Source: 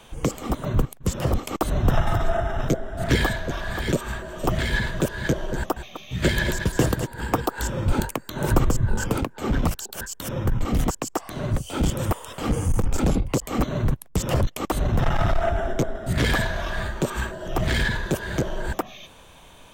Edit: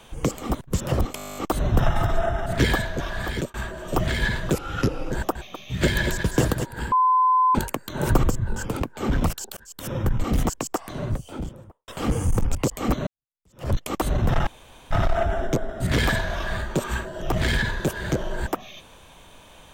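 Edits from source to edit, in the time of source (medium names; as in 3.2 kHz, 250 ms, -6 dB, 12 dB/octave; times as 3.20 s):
0.61–0.94 s: delete
1.48 s: stutter 0.02 s, 12 plays
2.57–2.97 s: delete
3.73–4.05 s: fade out equal-power
5.04–5.52 s: speed 83%
7.33–7.96 s: bleep 1.02 kHz -15 dBFS
8.72–9.22 s: gain -4 dB
9.98–10.33 s: fade in
11.16–12.29 s: studio fade out
12.96–13.25 s: delete
13.77–14.42 s: fade in exponential
15.17 s: insert room tone 0.44 s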